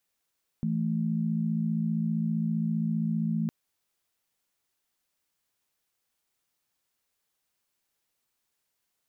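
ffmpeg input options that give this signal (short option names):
-f lavfi -i "aevalsrc='0.0398*(sin(2*PI*164.81*t)+sin(2*PI*220*t))':d=2.86:s=44100"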